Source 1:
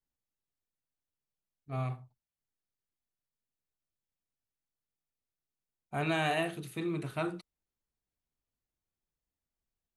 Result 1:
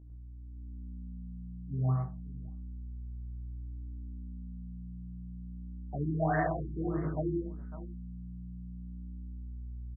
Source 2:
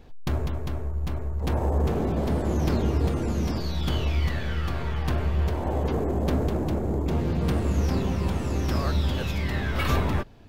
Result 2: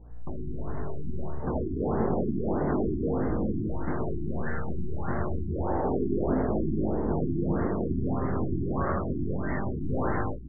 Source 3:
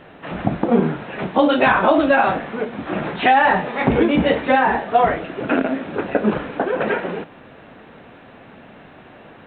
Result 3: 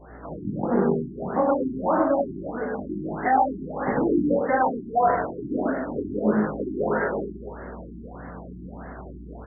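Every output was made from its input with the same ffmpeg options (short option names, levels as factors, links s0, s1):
-filter_complex "[0:a]acrossover=split=170|1200[s0][s1][s2];[s0]asoftclip=type=tanh:threshold=0.0316[s3];[s3][s1][s2]amix=inputs=3:normalize=0,aeval=exprs='val(0)+0.00501*(sin(2*PI*60*n/s)+sin(2*PI*2*60*n/s)/2+sin(2*PI*3*60*n/s)/3+sin(2*PI*4*60*n/s)/4+sin(2*PI*5*60*n/s)/5)':c=same,flanger=delay=19:depth=3.2:speed=0.3,aecho=1:1:51|69|78|101|139|551:0.133|0.211|0.266|0.668|0.398|0.141,asplit=2[s4][s5];[s5]acompressor=threshold=0.0282:ratio=6,volume=0.891[s6];[s4][s6]amix=inputs=2:normalize=0,highshelf=f=2100:t=q:w=1.5:g=-6.5,dynaudnorm=f=180:g=7:m=1.88,afftfilt=real='re*lt(b*sr/1024,380*pow(2200/380,0.5+0.5*sin(2*PI*1.6*pts/sr)))':imag='im*lt(b*sr/1024,380*pow(2200/380,0.5+0.5*sin(2*PI*1.6*pts/sr)))':win_size=1024:overlap=0.75,volume=0.447"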